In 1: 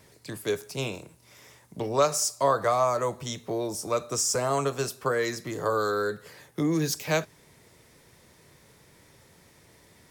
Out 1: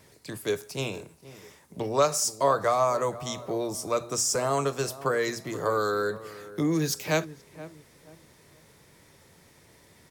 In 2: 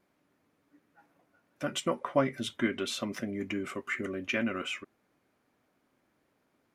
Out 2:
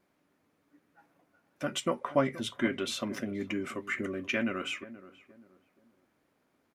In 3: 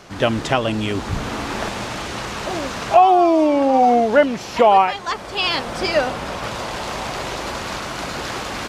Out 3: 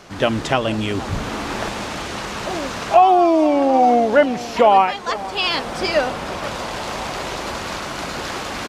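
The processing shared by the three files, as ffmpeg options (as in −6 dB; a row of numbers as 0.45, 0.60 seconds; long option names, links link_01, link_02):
-filter_complex "[0:a]bandreject=frequency=60:width_type=h:width=6,bandreject=frequency=120:width_type=h:width=6,asplit=2[link_01][link_02];[link_02]adelay=476,lowpass=frequency=1100:poles=1,volume=-15.5dB,asplit=2[link_03][link_04];[link_04]adelay=476,lowpass=frequency=1100:poles=1,volume=0.33,asplit=2[link_05][link_06];[link_06]adelay=476,lowpass=frequency=1100:poles=1,volume=0.33[link_07];[link_01][link_03][link_05][link_07]amix=inputs=4:normalize=0"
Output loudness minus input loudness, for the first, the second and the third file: 0.0, 0.0, 0.0 LU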